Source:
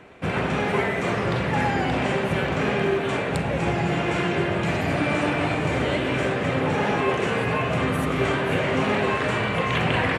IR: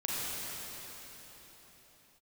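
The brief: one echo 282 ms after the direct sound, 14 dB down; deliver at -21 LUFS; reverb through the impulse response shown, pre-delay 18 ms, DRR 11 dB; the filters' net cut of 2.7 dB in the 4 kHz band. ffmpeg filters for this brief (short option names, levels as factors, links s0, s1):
-filter_complex "[0:a]equalizer=f=4000:t=o:g=-4,aecho=1:1:282:0.2,asplit=2[s0][s1];[1:a]atrim=start_sample=2205,adelay=18[s2];[s1][s2]afir=irnorm=-1:irlink=0,volume=0.126[s3];[s0][s3]amix=inputs=2:normalize=0,volume=1.33"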